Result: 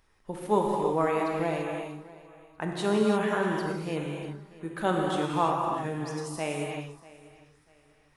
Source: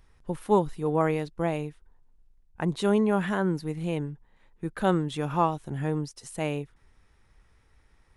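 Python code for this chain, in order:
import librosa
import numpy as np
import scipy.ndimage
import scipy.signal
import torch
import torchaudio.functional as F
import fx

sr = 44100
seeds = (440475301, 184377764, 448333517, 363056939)

y = fx.low_shelf(x, sr, hz=180.0, db=-12.0)
y = fx.echo_feedback(y, sr, ms=641, feedback_pct=30, wet_db=-20.0)
y = fx.rev_gated(y, sr, seeds[0], gate_ms=370, shape='flat', drr_db=-1.0)
y = F.gain(torch.from_numpy(y), -1.5).numpy()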